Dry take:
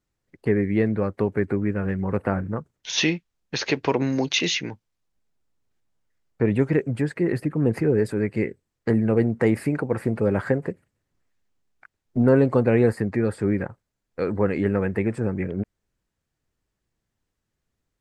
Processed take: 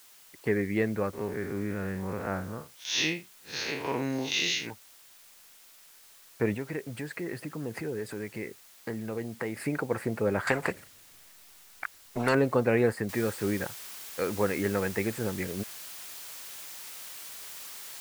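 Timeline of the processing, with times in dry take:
0:01.13–0:04.67: spectrum smeared in time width 116 ms
0:06.54–0:09.60: downward compressor 2 to 1, threshold −30 dBFS
0:10.47–0:12.35: every bin compressed towards the loudest bin 2 to 1
0:13.09: noise floor change −55 dB −43 dB
whole clip: low-shelf EQ 490 Hz −9.5 dB

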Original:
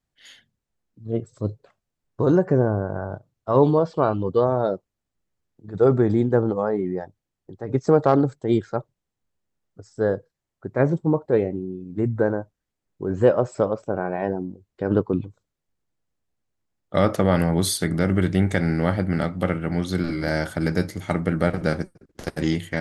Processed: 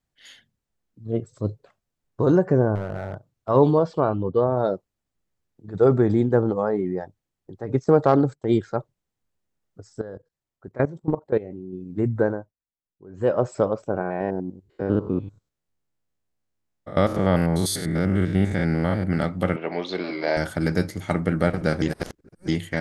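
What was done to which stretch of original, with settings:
0:02.75–0:03.49: hard clipping −22.5 dBFS
0:04.00–0:04.57: head-to-tape spacing loss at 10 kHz 21 dB
0:07.84–0:08.58: noise gate −39 dBFS, range −10 dB
0:10.01–0:11.73: output level in coarse steps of 18 dB
0:12.23–0:13.42: duck −18 dB, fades 0.30 s
0:14.01–0:19.04: spectrum averaged block by block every 100 ms
0:19.56–0:20.37: loudspeaker in its box 370–5,000 Hz, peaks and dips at 420 Hz +6 dB, 660 Hz +6 dB, 990 Hz +7 dB, 1,400 Hz −6 dB, 2,500 Hz +7 dB, 3,900 Hz +3 dB
0:21.82–0:22.48: reverse

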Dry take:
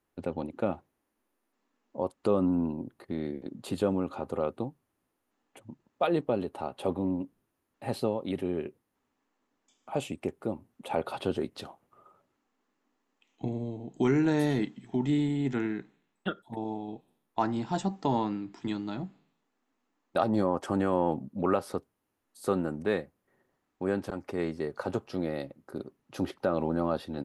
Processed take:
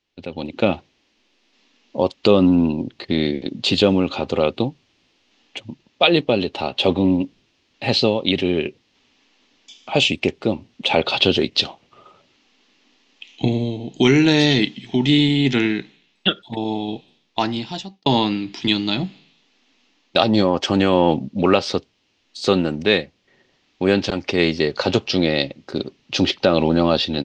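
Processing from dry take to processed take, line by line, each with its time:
0:16.76–0:18.06: fade out
whole clip: high shelf with overshoot 2,000 Hz +12.5 dB, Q 1.5; automatic gain control gain up to 15 dB; inverse Chebyshev low-pass filter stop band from 9,900 Hz, stop band 40 dB

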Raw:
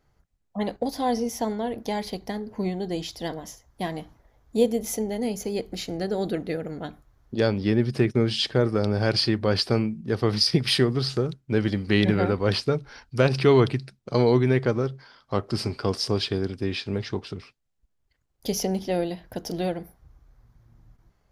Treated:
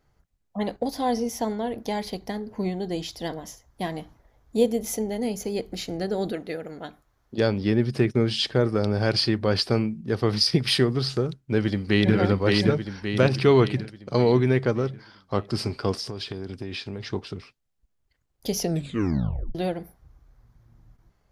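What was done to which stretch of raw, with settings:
0:06.32–0:07.38: low-shelf EQ 270 Hz −10 dB
0:11.37–0:12.14: delay throw 570 ms, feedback 50%, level −2 dB
0:15.93–0:17.13: downward compressor 12 to 1, threshold −28 dBFS
0:18.60: tape stop 0.95 s

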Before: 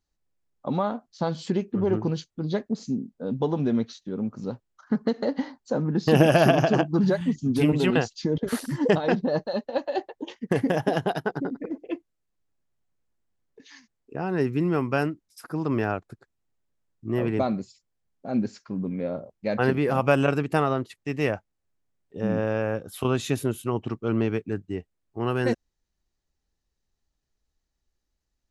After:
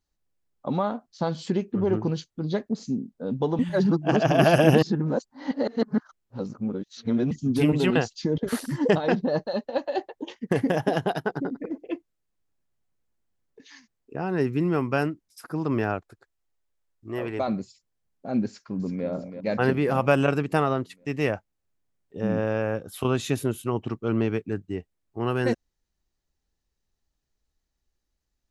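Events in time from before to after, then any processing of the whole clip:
0:03.59–0:07.31: reverse
0:16.01–0:17.48: parametric band 170 Hz −13 dB 1.6 octaves
0:18.46–0:19.07: delay throw 330 ms, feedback 60%, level −9.5 dB

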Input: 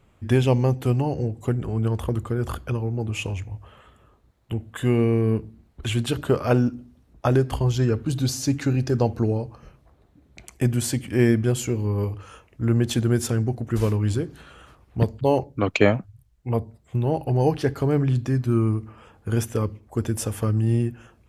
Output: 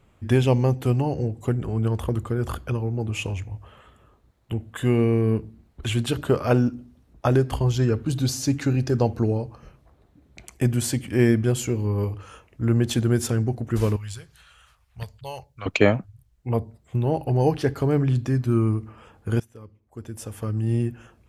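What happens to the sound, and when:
0:13.96–0:15.66: guitar amp tone stack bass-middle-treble 10-0-10
0:19.40–0:20.91: fade in quadratic, from −21 dB

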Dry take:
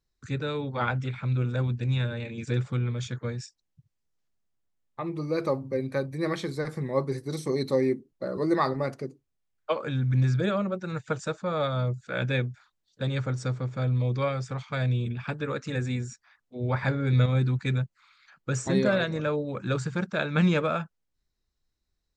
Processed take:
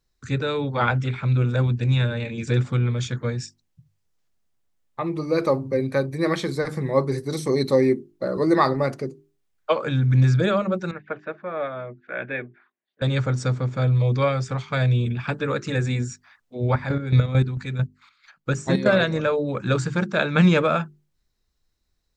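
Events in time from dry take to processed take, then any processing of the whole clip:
0:10.91–0:13.02: loudspeaker in its box 410–2,100 Hz, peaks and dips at 500 Hz −8 dB, 890 Hz −9 dB, 1,300 Hz −8 dB
0:16.68–0:18.86: square-wave tremolo 4.5 Hz, depth 65%, duty 35%
whole clip: mains-hum notches 50/100/150/200/250/300/350/400 Hz; level +6.5 dB

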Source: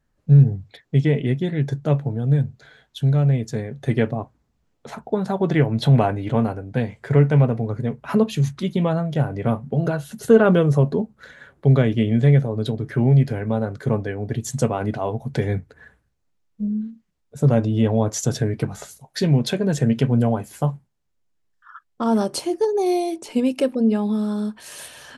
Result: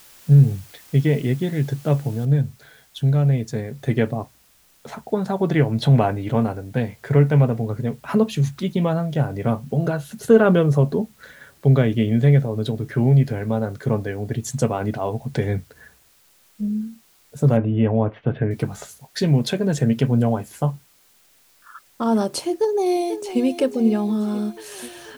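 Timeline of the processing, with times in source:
0:02.25: noise floor change −48 dB −57 dB
0:17.57–0:18.51: Butterworth low-pass 2,900 Hz 48 dB per octave
0:22.46–0:23.41: delay throw 490 ms, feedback 65%, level −11.5 dB

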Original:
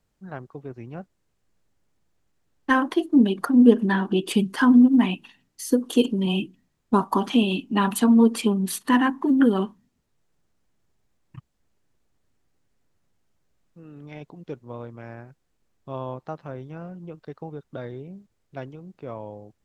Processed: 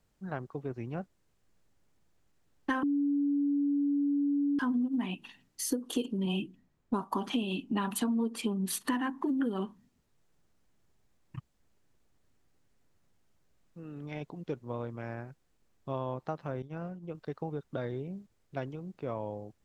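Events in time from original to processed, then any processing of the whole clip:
0:02.83–0:04.59: beep over 285 Hz −11.5 dBFS
0:06.17–0:08.66: one half of a high-frequency compander decoder only
0:16.62–0:17.15: downward expander −35 dBFS
whole clip: downward compressor 6 to 1, threshold −29 dBFS

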